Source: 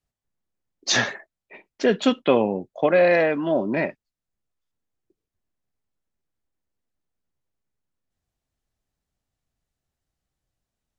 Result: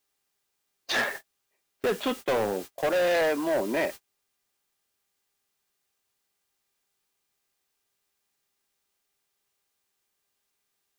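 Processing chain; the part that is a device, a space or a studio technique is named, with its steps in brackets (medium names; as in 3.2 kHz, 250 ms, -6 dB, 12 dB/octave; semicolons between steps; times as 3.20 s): aircraft radio (band-pass 330–2700 Hz; hard clipper -22 dBFS, distortion -7 dB; mains buzz 400 Hz, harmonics 22, -55 dBFS -1 dB/octave; white noise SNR 13 dB; gate -36 dBFS, range -33 dB)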